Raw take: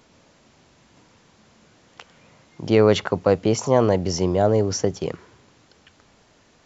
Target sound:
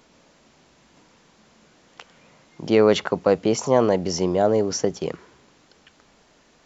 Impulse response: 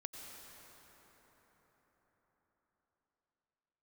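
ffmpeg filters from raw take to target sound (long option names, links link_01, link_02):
-af "equalizer=frequency=99:width=2.5:gain=-11.5"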